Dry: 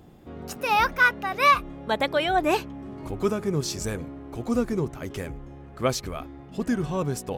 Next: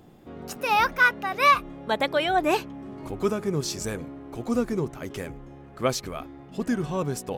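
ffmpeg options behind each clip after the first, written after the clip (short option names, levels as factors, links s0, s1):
-af "equalizer=f=60:w=0.92:g=-7.5"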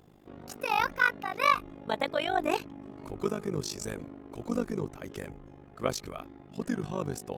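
-af "tremolo=f=50:d=0.919,volume=0.794"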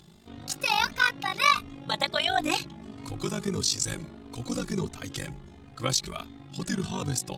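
-filter_complex "[0:a]equalizer=f=125:t=o:w=1:g=4,equalizer=f=500:t=o:w=1:g=-6,equalizer=f=4000:t=o:w=1:g=11,equalizer=f=8000:t=o:w=1:g=9,asplit=2[s0][s1];[s1]alimiter=limit=0.119:level=0:latency=1:release=113,volume=1.06[s2];[s0][s2]amix=inputs=2:normalize=0,asplit=2[s3][s4];[s4]adelay=3.1,afreqshift=1.5[s5];[s3][s5]amix=inputs=2:normalize=1"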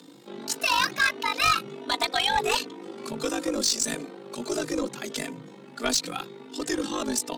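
-af "afreqshift=120,asoftclip=type=tanh:threshold=0.0944,asubboost=boost=8:cutoff=65,volume=1.68"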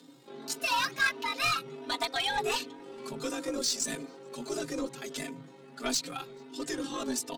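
-filter_complex "[0:a]aecho=1:1:7.4:0.86,asplit=2[s0][s1];[s1]adelay=431.5,volume=0.0355,highshelf=f=4000:g=-9.71[s2];[s0][s2]amix=inputs=2:normalize=0,volume=0.398"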